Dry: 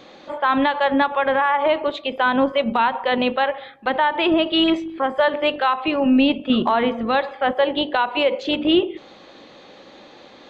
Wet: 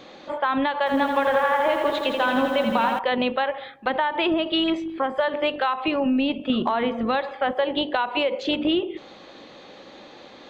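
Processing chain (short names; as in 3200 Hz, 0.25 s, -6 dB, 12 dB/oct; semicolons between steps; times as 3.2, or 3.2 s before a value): compressor, threshold -19 dBFS, peak gain reduction 7.5 dB; 0.78–2.99 lo-fi delay 83 ms, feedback 80%, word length 8-bit, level -6 dB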